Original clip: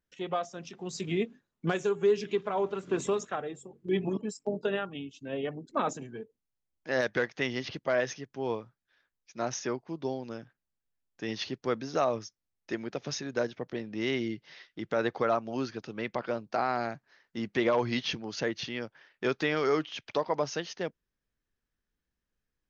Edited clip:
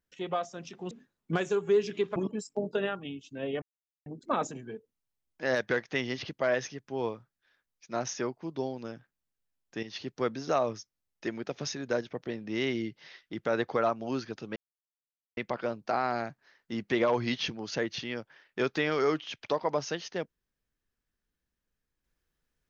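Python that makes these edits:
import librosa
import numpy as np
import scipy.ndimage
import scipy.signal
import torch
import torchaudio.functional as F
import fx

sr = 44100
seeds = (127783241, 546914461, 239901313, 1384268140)

y = fx.edit(x, sr, fx.cut(start_s=0.91, length_s=0.34),
    fx.cut(start_s=2.5, length_s=1.56),
    fx.insert_silence(at_s=5.52, length_s=0.44),
    fx.fade_in_from(start_s=11.29, length_s=0.31, floor_db=-12.0),
    fx.insert_silence(at_s=16.02, length_s=0.81), tone=tone)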